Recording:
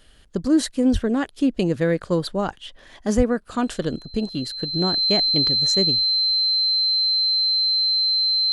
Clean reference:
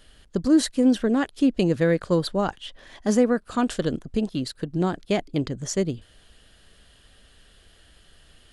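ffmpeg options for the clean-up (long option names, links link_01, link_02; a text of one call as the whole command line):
ffmpeg -i in.wav -filter_complex "[0:a]bandreject=frequency=4100:width=30,asplit=3[link_01][link_02][link_03];[link_01]afade=type=out:start_time=0.92:duration=0.02[link_04];[link_02]highpass=frequency=140:width=0.5412,highpass=frequency=140:width=1.3066,afade=type=in:start_time=0.92:duration=0.02,afade=type=out:start_time=1.04:duration=0.02[link_05];[link_03]afade=type=in:start_time=1.04:duration=0.02[link_06];[link_04][link_05][link_06]amix=inputs=3:normalize=0,asplit=3[link_07][link_08][link_09];[link_07]afade=type=out:start_time=3.16:duration=0.02[link_10];[link_08]highpass=frequency=140:width=0.5412,highpass=frequency=140:width=1.3066,afade=type=in:start_time=3.16:duration=0.02,afade=type=out:start_time=3.28:duration=0.02[link_11];[link_09]afade=type=in:start_time=3.28:duration=0.02[link_12];[link_10][link_11][link_12]amix=inputs=3:normalize=0" out.wav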